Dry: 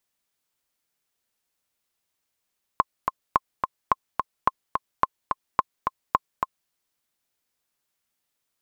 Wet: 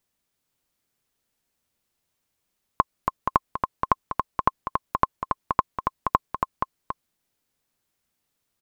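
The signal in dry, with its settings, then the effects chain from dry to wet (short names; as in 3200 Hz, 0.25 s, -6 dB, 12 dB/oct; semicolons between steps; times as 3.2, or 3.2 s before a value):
metronome 215 bpm, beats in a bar 2, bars 7, 1060 Hz, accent 5 dB -4.5 dBFS
low shelf 410 Hz +8.5 dB; on a send: echo 0.475 s -6 dB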